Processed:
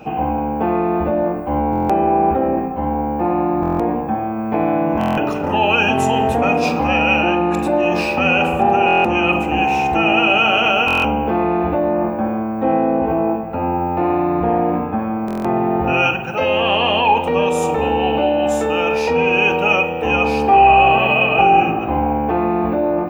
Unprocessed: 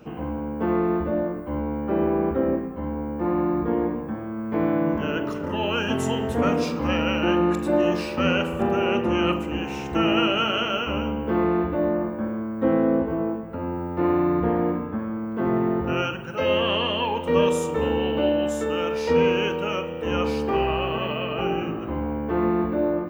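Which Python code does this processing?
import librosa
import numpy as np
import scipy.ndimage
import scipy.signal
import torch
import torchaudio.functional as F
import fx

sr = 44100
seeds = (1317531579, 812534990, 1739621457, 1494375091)

p1 = fx.over_compress(x, sr, threshold_db=-26.0, ratio=-1.0)
p2 = x + (p1 * librosa.db_to_amplitude(0.5))
p3 = fx.small_body(p2, sr, hz=(770.0, 2500.0), ring_ms=40, db=18)
p4 = fx.buffer_glitch(p3, sr, at_s=(1.71, 3.61, 4.99, 8.86, 10.86, 15.26), block=1024, repeats=7)
y = p4 * librosa.db_to_amplitude(-1.0)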